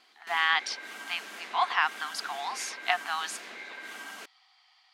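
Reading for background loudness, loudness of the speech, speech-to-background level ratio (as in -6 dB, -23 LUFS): -42.0 LUFS, -30.0 LUFS, 12.0 dB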